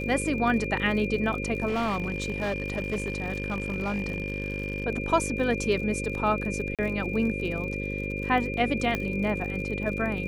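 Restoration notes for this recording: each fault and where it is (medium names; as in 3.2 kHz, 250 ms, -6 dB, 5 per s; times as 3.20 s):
buzz 50 Hz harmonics 11 -33 dBFS
crackle 49 per s -35 dBFS
whine 2.4 kHz -34 dBFS
1.67–4.86 s: clipped -24 dBFS
6.75–6.79 s: dropout 37 ms
8.95 s: pop -14 dBFS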